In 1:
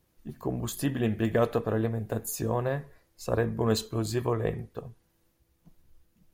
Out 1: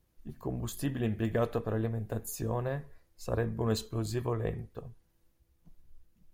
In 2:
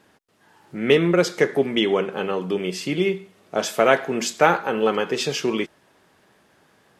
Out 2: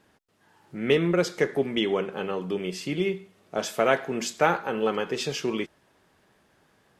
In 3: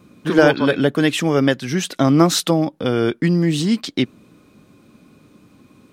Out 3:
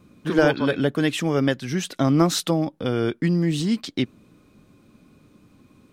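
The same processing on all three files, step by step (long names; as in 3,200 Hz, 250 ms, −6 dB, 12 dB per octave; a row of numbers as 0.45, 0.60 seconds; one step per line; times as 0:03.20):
low-shelf EQ 69 Hz +11.5 dB
level −5.5 dB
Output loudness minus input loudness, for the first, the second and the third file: −4.5, −5.0, −5.0 LU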